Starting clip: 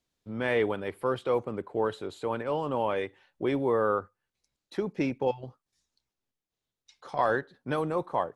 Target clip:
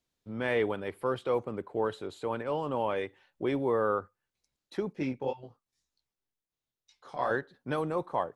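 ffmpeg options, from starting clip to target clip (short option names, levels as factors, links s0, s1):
-filter_complex "[0:a]asettb=1/sr,asplit=3[s0][s1][s2];[s0]atrim=end=4.934[s3];[s1]atrim=start=4.93:end=7.31,asetpts=PTS-STARTPTS,afade=t=in:d=0.004:c=qsin,afade=t=out:st=2.376:d=0.004:c=qsin,flanger=delay=18:depth=6.4:speed=2[s4];[s2]atrim=start=7.306[s5];[s3][s4]acrossfade=d=0.004:c1=hsin:c2=qsin[s6];[s6][s5]acrossfade=d=0.004:c1=qsin:c2=hsin,volume=0.794"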